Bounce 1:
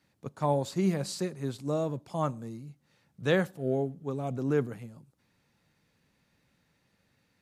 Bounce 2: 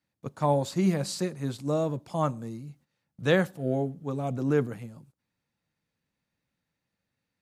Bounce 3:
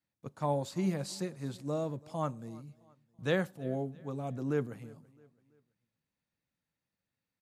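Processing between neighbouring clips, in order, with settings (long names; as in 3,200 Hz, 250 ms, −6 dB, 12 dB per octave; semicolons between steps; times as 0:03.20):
noise gate −59 dBFS, range −15 dB; notch filter 400 Hz, Q 13; level +3 dB
repeating echo 332 ms, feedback 42%, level −23 dB; level −7 dB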